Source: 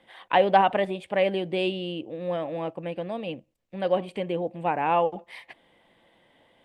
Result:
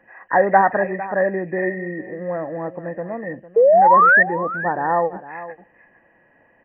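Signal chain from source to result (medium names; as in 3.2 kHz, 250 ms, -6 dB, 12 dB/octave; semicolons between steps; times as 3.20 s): knee-point frequency compression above 1.6 kHz 4:1; 0.38–0.97 s: treble shelf 2.1 kHz +9.5 dB; 3.56–4.23 s: painted sound rise 440–1900 Hz -15 dBFS; on a send: delay 454 ms -15 dB; on the sum: trim +3.5 dB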